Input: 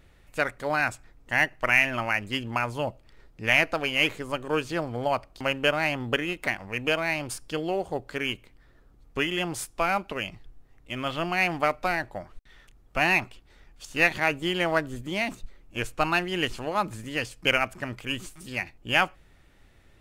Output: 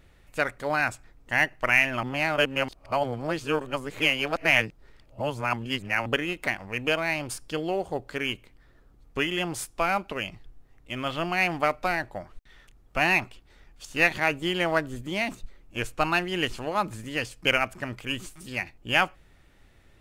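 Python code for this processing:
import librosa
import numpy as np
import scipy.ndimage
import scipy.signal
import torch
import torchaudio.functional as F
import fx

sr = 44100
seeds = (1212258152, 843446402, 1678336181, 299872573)

y = fx.edit(x, sr, fx.reverse_span(start_s=2.03, length_s=4.03), tone=tone)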